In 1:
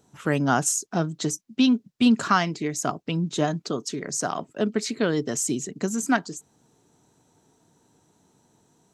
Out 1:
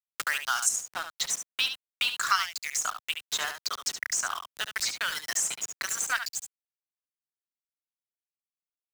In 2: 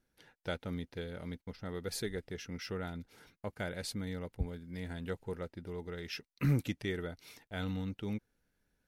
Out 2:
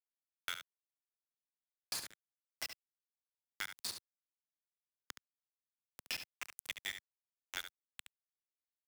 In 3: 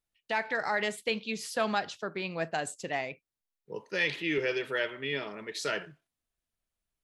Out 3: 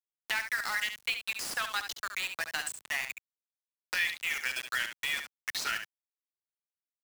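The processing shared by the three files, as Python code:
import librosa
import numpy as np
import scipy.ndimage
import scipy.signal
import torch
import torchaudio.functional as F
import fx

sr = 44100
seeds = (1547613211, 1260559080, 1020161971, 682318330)

p1 = fx.dereverb_blind(x, sr, rt60_s=1.5)
p2 = scipy.signal.sosfilt(scipy.signal.butter(4, 1200.0, 'highpass', fs=sr, output='sos'), p1)
p3 = fx.level_steps(p2, sr, step_db=22)
p4 = p2 + F.gain(torch.from_numpy(p3), 2.5).numpy()
p5 = np.where(np.abs(p4) >= 10.0 ** (-34.0 / 20.0), p4, 0.0)
p6 = p5 + fx.echo_single(p5, sr, ms=70, db=-9.0, dry=0)
y = fx.band_squash(p6, sr, depth_pct=70)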